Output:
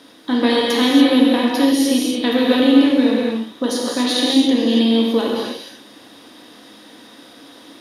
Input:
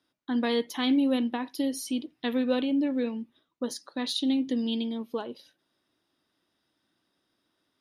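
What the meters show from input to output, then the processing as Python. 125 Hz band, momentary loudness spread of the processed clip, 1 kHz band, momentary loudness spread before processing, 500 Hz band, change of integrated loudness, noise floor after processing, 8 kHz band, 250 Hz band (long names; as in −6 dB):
can't be measured, 10 LU, +14.0 dB, 11 LU, +13.5 dB, +13.0 dB, −44 dBFS, +13.5 dB, +13.0 dB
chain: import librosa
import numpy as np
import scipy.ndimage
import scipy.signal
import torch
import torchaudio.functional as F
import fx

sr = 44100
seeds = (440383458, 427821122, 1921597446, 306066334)

y = fx.bin_compress(x, sr, power=0.6)
y = fx.rev_gated(y, sr, seeds[0], gate_ms=310, shape='flat', drr_db=-3.0)
y = y * librosa.db_to_amplitude(6.0)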